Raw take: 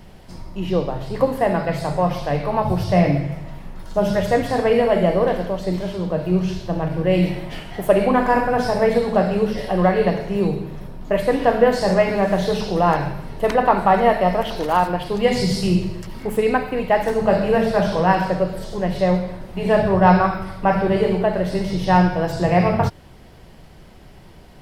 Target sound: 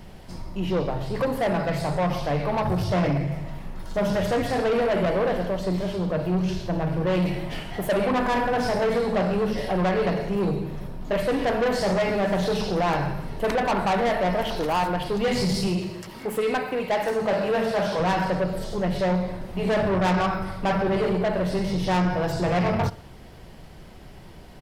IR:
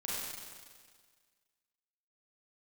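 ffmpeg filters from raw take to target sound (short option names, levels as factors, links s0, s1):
-filter_complex "[0:a]asettb=1/sr,asplit=3[s0][s1][s2];[s0]atrim=end=15.674[s3];[s1]atrim=start=15.67:end=18,asetpts=PTS-STARTPTS,afade=t=in:d=0.004:c=qsin,afade=t=out:st=2.326:d=0.004:c=qsin,highpass=f=300:p=1[s4];[s2]atrim=start=17.996[s5];[s3][s4]acrossfade=d=0.004:c1=hsin:c2=qsin[s6];[s6][s5]acrossfade=d=0.004:c1=qsin:c2=hsin,aecho=1:1:61|122|183:0.0631|0.0334|0.0177,asoftclip=type=tanh:threshold=0.112"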